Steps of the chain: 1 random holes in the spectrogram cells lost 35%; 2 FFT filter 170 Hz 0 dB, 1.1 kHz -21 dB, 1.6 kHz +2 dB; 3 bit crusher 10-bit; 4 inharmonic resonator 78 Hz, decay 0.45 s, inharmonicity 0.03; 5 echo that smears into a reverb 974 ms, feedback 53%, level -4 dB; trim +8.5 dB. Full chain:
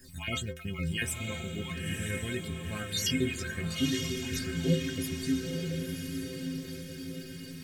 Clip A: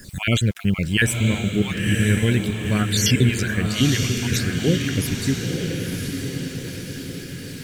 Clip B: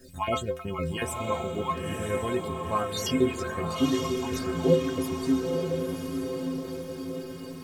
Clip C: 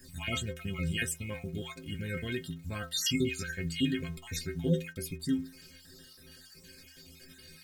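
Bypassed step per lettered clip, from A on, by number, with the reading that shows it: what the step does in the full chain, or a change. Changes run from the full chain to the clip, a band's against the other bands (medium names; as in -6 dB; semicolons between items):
4, 125 Hz band +3.5 dB; 2, 1 kHz band +17.5 dB; 5, echo-to-direct -2.5 dB to none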